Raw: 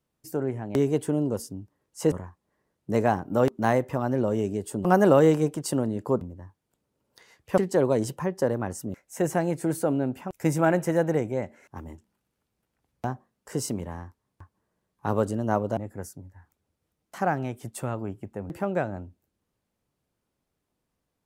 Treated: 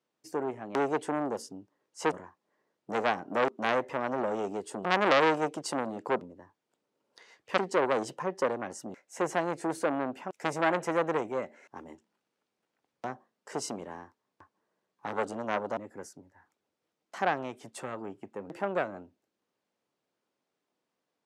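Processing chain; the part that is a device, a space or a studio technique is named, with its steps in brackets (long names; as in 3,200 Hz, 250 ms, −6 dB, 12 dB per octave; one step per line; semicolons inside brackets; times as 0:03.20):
public-address speaker with an overloaded transformer (saturating transformer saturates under 2,100 Hz; band-pass filter 300–6,400 Hz)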